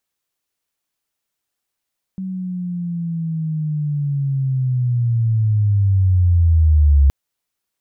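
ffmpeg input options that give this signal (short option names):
-f lavfi -i "aevalsrc='pow(10,(-23+15*t/4.92)/20)*sin(2*PI*(190*t-122*t*t/(2*4.92)))':d=4.92:s=44100"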